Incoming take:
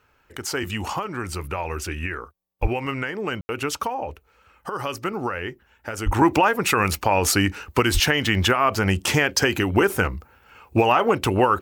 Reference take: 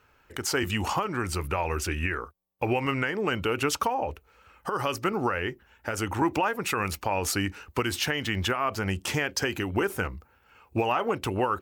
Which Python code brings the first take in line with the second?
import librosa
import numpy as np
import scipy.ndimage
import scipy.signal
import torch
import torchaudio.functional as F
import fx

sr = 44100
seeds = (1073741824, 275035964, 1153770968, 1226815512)

y = fx.highpass(x, sr, hz=140.0, slope=24, at=(2.61, 2.73), fade=0.02)
y = fx.highpass(y, sr, hz=140.0, slope=24, at=(6.05, 6.17), fade=0.02)
y = fx.highpass(y, sr, hz=140.0, slope=24, at=(7.93, 8.05), fade=0.02)
y = fx.fix_ambience(y, sr, seeds[0], print_start_s=2.12, print_end_s=2.62, start_s=3.41, end_s=3.49)
y = fx.fix_level(y, sr, at_s=6.12, step_db=-8.0)